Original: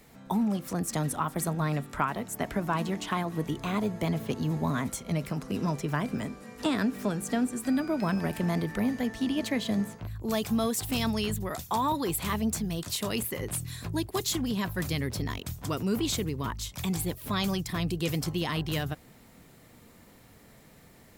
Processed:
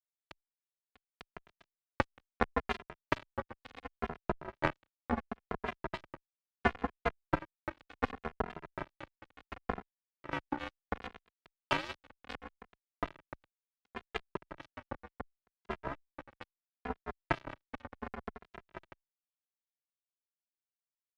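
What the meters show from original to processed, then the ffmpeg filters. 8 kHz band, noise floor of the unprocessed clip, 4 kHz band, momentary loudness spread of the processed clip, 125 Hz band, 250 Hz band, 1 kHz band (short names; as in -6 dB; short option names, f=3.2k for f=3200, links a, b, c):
-30.0 dB, -55 dBFS, -14.0 dB, 19 LU, -16.0 dB, -15.5 dB, -5.5 dB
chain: -filter_complex "[0:a]acrusher=bits=3:mode=log:mix=0:aa=0.000001,dynaudnorm=f=260:g=13:m=11dB,lowshelf=f=170:g=8.5,afftfilt=real='re*between(b*sr/4096,120,1200)':imag='im*between(b*sr/4096,120,1200)':win_size=4096:overlap=0.75,aecho=1:1:170|340:0.0631|0.0183,afreqshift=67,adynamicequalizer=threshold=0.0447:dfrequency=360:dqfactor=1.4:tfrequency=360:tqfactor=1.4:attack=5:release=100:ratio=0.375:range=3:mode=cutabove:tftype=bell,acompressor=threshold=-47dB:ratio=2,acrusher=bits=3:mix=0:aa=0.5,asplit=2[a][b];[b]adelay=2.5,afreqshift=-0.7[c];[a][c]amix=inputs=2:normalize=1,volume=17dB"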